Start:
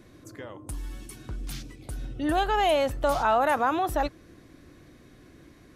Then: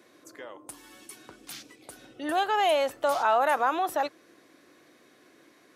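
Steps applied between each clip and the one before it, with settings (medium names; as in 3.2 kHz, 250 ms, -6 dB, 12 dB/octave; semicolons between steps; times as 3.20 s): high-pass 410 Hz 12 dB/octave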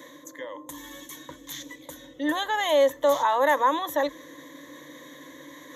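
rippled EQ curve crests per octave 1.1, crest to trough 17 dB; reverse; upward compressor, threshold -35 dBFS; reverse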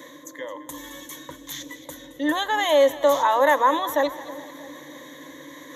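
two-band feedback delay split 700 Hz, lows 320 ms, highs 217 ms, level -15.5 dB; trim +3 dB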